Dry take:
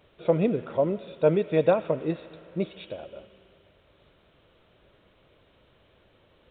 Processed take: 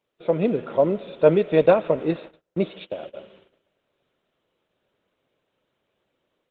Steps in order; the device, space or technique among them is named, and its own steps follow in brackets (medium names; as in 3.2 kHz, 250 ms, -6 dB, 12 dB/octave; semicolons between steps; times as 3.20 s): 1.66–3.17 s: gate -42 dBFS, range -20 dB; video call (high-pass 160 Hz 12 dB/octave; level rider gain up to 6 dB; gate -50 dBFS, range -17 dB; Opus 16 kbps 48 kHz)